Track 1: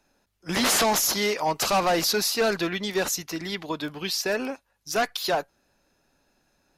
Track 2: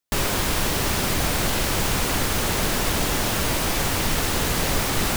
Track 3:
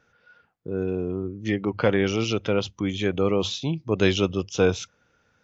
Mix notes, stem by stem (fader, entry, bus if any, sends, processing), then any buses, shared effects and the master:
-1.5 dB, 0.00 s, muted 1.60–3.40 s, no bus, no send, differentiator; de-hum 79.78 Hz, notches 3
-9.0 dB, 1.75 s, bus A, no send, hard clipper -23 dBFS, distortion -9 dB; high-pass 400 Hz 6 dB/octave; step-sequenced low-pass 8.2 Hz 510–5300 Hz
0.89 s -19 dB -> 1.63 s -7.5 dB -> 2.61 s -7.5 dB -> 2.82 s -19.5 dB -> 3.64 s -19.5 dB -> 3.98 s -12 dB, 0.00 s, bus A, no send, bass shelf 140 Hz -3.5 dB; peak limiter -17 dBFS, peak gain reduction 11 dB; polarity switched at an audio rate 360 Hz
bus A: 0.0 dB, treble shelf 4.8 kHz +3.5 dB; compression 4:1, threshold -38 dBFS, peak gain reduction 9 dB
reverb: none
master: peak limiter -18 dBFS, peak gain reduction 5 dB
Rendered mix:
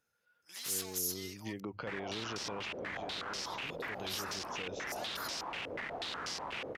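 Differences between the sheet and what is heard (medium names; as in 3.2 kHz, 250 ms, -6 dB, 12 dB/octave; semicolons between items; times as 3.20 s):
stem 1 -1.5 dB -> -12.5 dB; stem 3: missing polarity switched at an audio rate 360 Hz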